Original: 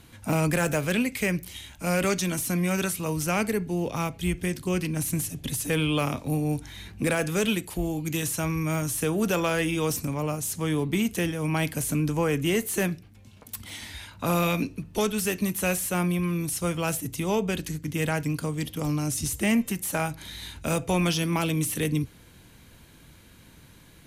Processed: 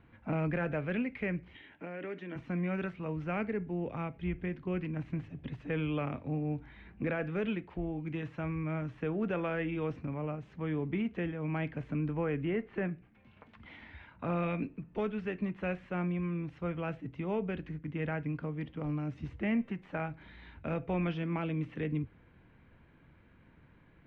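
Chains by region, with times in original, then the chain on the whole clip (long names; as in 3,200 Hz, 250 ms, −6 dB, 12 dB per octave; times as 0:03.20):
0:01.55–0:02.36: downward compressor, threshold −31 dBFS + loudspeaker in its box 190–8,900 Hz, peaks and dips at 300 Hz +7 dB, 430 Hz +7 dB, 1,200 Hz −4 dB, 1,800 Hz +7 dB, 3,100 Hz +5 dB, 5,200 Hz −7 dB
0:12.41–0:13.76: treble cut that deepens with the level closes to 2,600 Hz, closed at −24.5 dBFS + one half of a high-frequency compander encoder only
whole clip: low-pass filter 2,300 Hz 24 dB per octave; mains-hum notches 50/100 Hz; dynamic equaliser 1,000 Hz, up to −4 dB, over −42 dBFS, Q 2.4; level −7.5 dB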